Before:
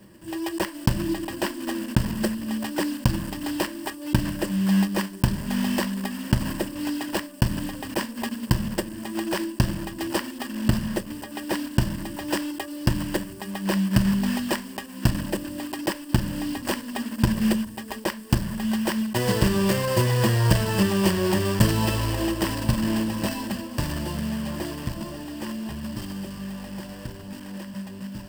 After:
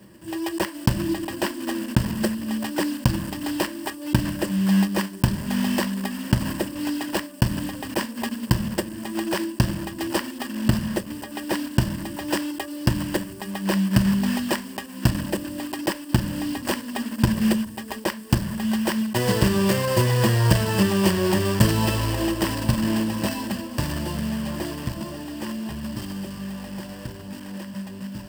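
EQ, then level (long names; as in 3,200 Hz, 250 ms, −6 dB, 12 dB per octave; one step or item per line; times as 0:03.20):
high-pass filter 46 Hz
+1.5 dB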